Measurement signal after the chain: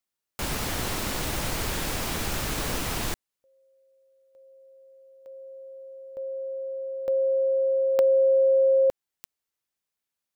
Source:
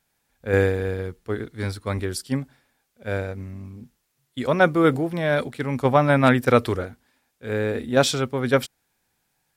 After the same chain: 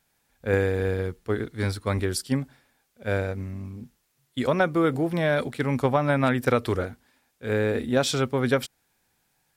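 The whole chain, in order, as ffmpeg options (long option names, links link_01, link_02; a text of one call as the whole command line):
ffmpeg -i in.wav -af "acompressor=threshold=-20dB:ratio=5,volume=1.5dB" out.wav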